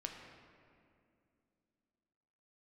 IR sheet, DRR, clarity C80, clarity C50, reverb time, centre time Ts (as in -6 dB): 1.5 dB, 5.0 dB, 4.0 dB, 2.5 s, 63 ms